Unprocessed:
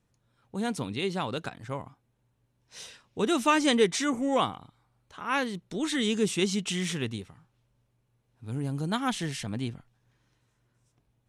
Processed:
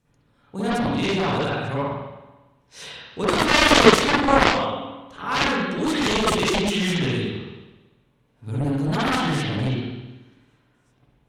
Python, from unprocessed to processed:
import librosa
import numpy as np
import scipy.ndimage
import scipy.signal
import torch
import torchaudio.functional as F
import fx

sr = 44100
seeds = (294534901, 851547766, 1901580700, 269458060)

y = fx.rev_spring(x, sr, rt60_s=1.1, pass_ms=(47, 54), chirp_ms=20, drr_db=-9.0)
y = fx.cheby_harmonics(y, sr, harmonics=(3, 7), levels_db=(-19, -12), full_scale_db=-1.5)
y = y * 10.0 ** (1.5 / 20.0)